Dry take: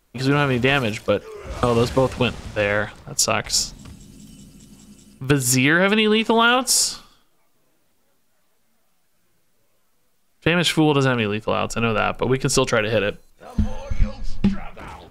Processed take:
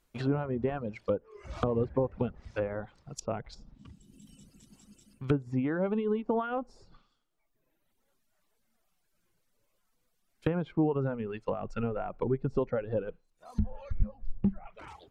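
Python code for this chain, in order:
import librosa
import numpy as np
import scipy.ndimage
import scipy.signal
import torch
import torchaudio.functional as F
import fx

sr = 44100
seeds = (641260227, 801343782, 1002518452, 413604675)

y = fx.dereverb_blind(x, sr, rt60_s=1.1)
y = fx.env_lowpass_down(y, sr, base_hz=710.0, full_db=-18.5)
y = F.gain(torch.from_numpy(y), -8.5).numpy()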